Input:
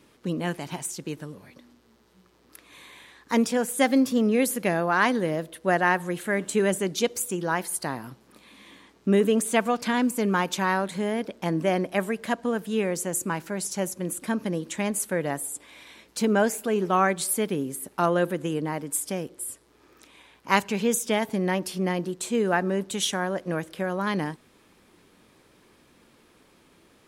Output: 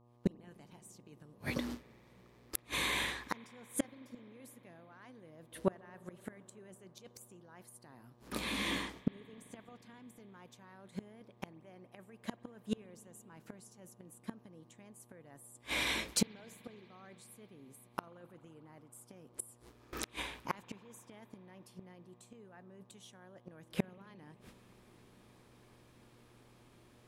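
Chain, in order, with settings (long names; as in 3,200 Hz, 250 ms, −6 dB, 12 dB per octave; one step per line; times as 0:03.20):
fade in at the beginning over 0.80 s
noise gate with hold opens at −45 dBFS
low-shelf EQ 88 Hz +9 dB
reversed playback
downward compressor 12 to 1, threshold −33 dBFS, peak gain reduction 19 dB
reversed playback
gate with flip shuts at −32 dBFS, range −34 dB
hum with harmonics 120 Hz, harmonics 10, −80 dBFS −5 dB per octave
on a send: convolution reverb RT60 5.5 s, pre-delay 43 ms, DRR 20 dB
on the sum: level +14 dB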